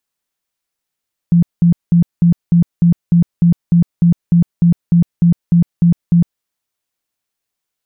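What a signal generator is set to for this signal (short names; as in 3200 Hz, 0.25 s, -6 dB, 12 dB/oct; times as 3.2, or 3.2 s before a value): tone bursts 171 Hz, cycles 18, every 0.30 s, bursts 17, -6 dBFS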